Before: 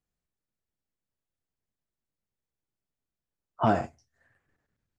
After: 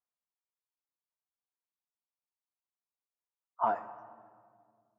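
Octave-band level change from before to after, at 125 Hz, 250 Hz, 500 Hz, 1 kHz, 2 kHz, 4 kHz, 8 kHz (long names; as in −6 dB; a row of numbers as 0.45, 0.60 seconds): below −25 dB, −19.0 dB, −7.5 dB, −2.5 dB, −8.5 dB, below −15 dB, can't be measured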